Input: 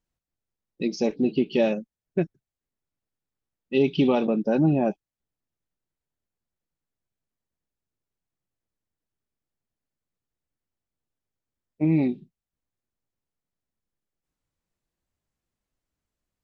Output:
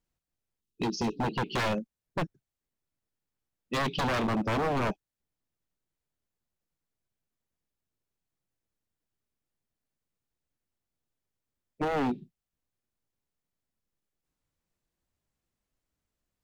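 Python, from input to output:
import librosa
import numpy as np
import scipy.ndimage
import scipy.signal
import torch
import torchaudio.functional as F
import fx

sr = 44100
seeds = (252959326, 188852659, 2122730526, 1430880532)

y = fx.spec_erase(x, sr, start_s=0.61, length_s=0.57, low_hz=440.0, high_hz=2500.0)
y = fx.room_flutter(y, sr, wall_m=10.5, rt60_s=0.21, at=(4.05, 4.89))
y = 10.0 ** (-23.0 / 20.0) * (np.abs((y / 10.0 ** (-23.0 / 20.0) + 3.0) % 4.0 - 2.0) - 1.0)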